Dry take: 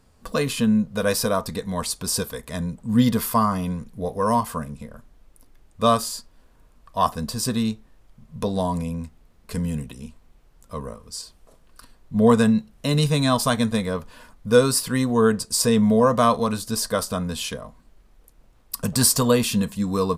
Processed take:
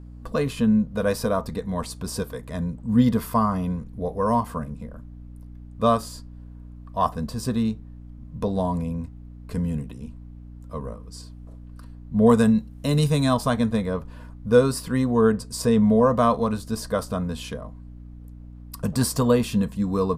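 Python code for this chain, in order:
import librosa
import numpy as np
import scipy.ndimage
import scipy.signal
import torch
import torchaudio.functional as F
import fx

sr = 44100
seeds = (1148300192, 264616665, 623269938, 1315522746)

y = fx.high_shelf(x, sr, hz=2100.0, db=-11.0)
y = fx.add_hum(y, sr, base_hz=60, snr_db=17)
y = fx.high_shelf(y, sr, hz=5600.0, db=11.0, at=(12.26, 13.34))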